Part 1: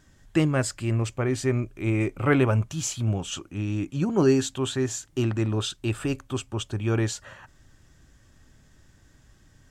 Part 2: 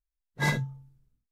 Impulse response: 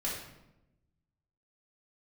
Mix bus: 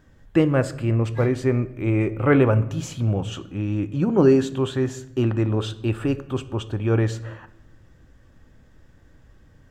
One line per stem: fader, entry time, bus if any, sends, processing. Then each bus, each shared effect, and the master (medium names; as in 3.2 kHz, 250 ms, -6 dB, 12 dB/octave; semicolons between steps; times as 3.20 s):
+2.5 dB, 0.00 s, send -15 dB, peaking EQ 490 Hz +7.5 dB 0.22 oct
-3.0 dB, 0.75 s, no send, auto duck -10 dB, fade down 1.90 s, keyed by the first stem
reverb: on, RT60 0.90 s, pre-delay 3 ms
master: peaking EQ 7.8 kHz -13 dB 2.2 oct